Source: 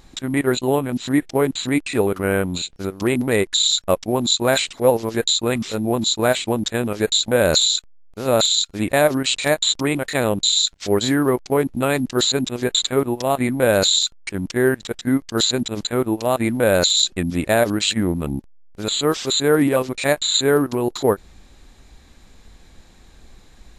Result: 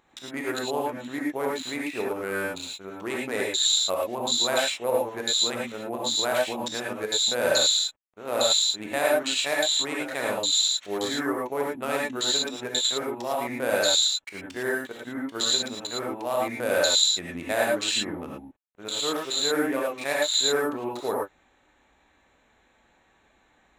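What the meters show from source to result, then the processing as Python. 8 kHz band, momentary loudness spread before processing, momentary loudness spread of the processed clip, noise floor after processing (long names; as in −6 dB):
−4.0 dB, 7 LU, 11 LU, −64 dBFS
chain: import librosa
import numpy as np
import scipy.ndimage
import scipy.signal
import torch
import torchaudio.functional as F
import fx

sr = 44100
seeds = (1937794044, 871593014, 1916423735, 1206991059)

y = fx.wiener(x, sr, points=9)
y = fx.highpass(y, sr, hz=700.0, slope=6)
y = fx.rev_gated(y, sr, seeds[0], gate_ms=130, shape='rising', drr_db=-3.0)
y = y * librosa.db_to_amplitude(-7.5)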